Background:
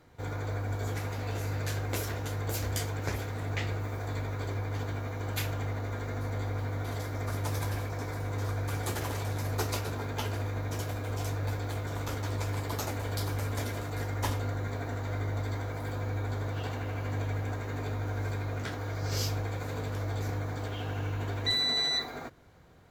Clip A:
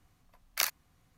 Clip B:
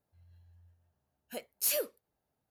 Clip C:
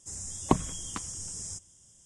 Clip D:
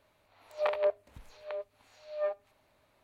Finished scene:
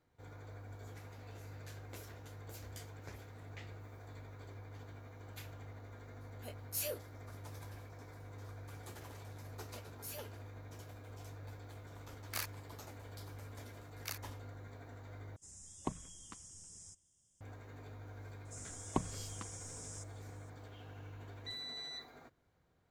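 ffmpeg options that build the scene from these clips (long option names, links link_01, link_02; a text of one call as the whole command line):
ffmpeg -i bed.wav -i cue0.wav -i cue1.wav -i cue2.wav -filter_complex "[2:a]asplit=2[link_01][link_02];[1:a]asplit=2[link_03][link_04];[3:a]asplit=2[link_05][link_06];[0:a]volume=-17dB[link_07];[link_01]flanger=delay=20:depth=3:speed=2.2[link_08];[link_02]asoftclip=type=tanh:threshold=-29.5dB[link_09];[link_03]aeval=exprs='0.0794*(abs(mod(val(0)/0.0794+3,4)-2)-1)':channel_layout=same[link_10];[link_07]asplit=2[link_11][link_12];[link_11]atrim=end=15.364[link_13];[link_05]atrim=end=2.05,asetpts=PTS-STARTPTS,volume=-15.5dB[link_14];[link_12]atrim=start=17.406[link_15];[link_08]atrim=end=2.5,asetpts=PTS-STARTPTS,volume=-5.5dB,afade=type=in:duration=0.004:curve=hsin,afade=type=out:start_time=2.496:duration=0.004:curve=hsin,adelay=5110[link_16];[link_09]atrim=end=2.5,asetpts=PTS-STARTPTS,volume=-13.5dB,afade=type=in:duration=0.004:curve=hsin,afade=type=out:start_time=2.496:duration=0.004:curve=hsin,adelay=8410[link_17];[link_10]atrim=end=1.17,asetpts=PTS-STARTPTS,volume=-6.5dB,afade=type=in:duration=0.004:curve=hsin,afade=type=out:start_time=1.166:duration=0.004:curve=hsin,adelay=11760[link_18];[link_04]atrim=end=1.17,asetpts=PTS-STARTPTS,volume=-14.5dB,afade=type=in:duration=0.004:curve=hsin,afade=type=out:start_time=1.166:duration=0.004:curve=hsin,adelay=594468S[link_19];[link_06]atrim=end=2.05,asetpts=PTS-STARTPTS,volume=-11dB,afade=type=in:duration=0.004:curve=hsin,afade=type=out:start_time=2.046:duration=0.004:curve=hsin,adelay=18450[link_20];[link_13][link_14]acrossfade=duration=0.004:curve1=hsin:curve2=hsin[link_21];[link_21][link_15]acrossfade=duration=0.004:curve1=hsin:curve2=hsin[link_22];[link_22][link_16][link_17][link_18][link_19][link_20]amix=inputs=6:normalize=0" out.wav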